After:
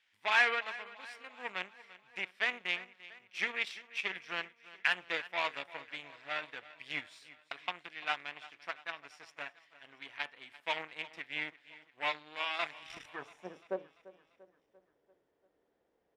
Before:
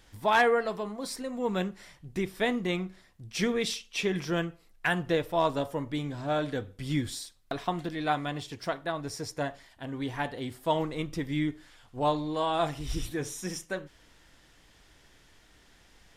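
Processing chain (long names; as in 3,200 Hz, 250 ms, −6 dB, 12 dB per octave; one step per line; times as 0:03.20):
dynamic equaliser 3,500 Hz, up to −3 dB, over −45 dBFS, Q 0.81
harmonic generator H 7 −19 dB, 8 −29 dB, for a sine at −13 dBFS
soft clipping −13 dBFS, distortion −25 dB
band-pass filter sweep 2,400 Hz → 480 Hz, 0:12.89–0:13.59
on a send: repeating echo 343 ms, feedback 55%, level −18 dB
on the sum: level +7.5 dB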